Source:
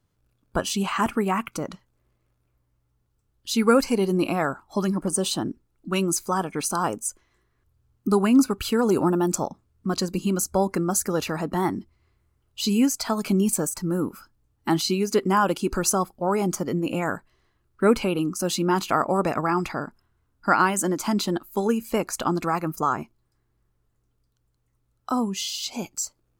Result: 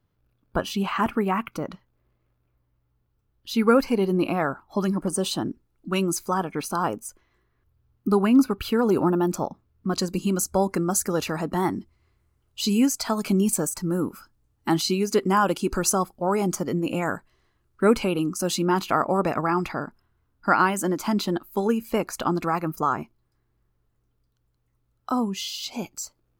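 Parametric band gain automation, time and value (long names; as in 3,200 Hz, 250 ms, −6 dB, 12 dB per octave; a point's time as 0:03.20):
parametric band 7,800 Hz 1.1 octaves
−13 dB
from 0:04.81 −4.5 dB
from 0:06.34 −11 dB
from 0:09.94 0 dB
from 0:18.65 −6 dB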